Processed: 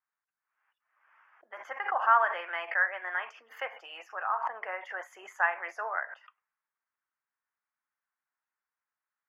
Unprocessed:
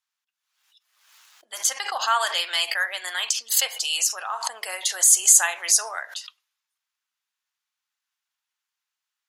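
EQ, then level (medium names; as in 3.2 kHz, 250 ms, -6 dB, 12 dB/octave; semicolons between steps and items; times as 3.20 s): inverse Chebyshev low-pass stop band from 3.7 kHz, stop band 40 dB; bass shelf 190 Hz -9.5 dB; 0.0 dB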